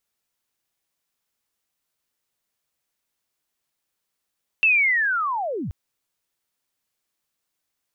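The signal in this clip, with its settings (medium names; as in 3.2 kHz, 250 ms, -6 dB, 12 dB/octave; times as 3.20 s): sweep linear 2.7 kHz -> 61 Hz -13.5 dBFS -> -26.5 dBFS 1.08 s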